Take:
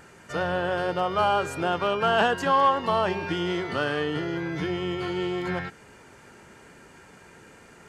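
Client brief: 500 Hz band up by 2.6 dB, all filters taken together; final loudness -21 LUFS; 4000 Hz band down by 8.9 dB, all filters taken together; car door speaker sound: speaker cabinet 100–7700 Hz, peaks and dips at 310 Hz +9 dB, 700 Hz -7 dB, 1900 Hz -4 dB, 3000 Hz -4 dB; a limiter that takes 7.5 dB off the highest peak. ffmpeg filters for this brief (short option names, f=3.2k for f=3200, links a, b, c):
-af "equalizer=f=500:t=o:g=3.5,equalizer=f=4k:t=o:g=-8.5,alimiter=limit=-16.5dB:level=0:latency=1,highpass=100,equalizer=f=310:t=q:w=4:g=9,equalizer=f=700:t=q:w=4:g=-7,equalizer=f=1.9k:t=q:w=4:g=-4,equalizer=f=3k:t=q:w=4:g=-4,lowpass=f=7.7k:w=0.5412,lowpass=f=7.7k:w=1.3066,volume=5dB"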